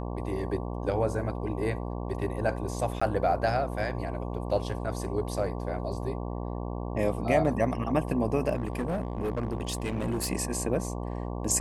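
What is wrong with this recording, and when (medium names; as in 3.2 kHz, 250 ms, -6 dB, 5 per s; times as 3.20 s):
buzz 60 Hz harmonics 19 -34 dBFS
3.00–3.02 s: dropout 15 ms
8.56–10.32 s: clipped -25.5 dBFS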